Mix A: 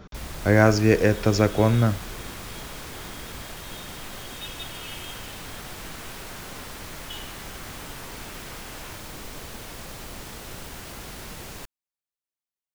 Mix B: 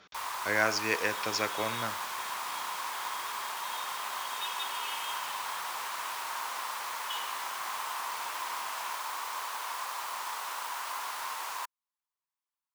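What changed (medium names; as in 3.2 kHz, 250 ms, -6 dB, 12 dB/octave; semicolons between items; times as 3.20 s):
speech: add band-pass filter 3.3 kHz, Q 0.71; first sound: add resonant high-pass 1 kHz, resonance Q 5.3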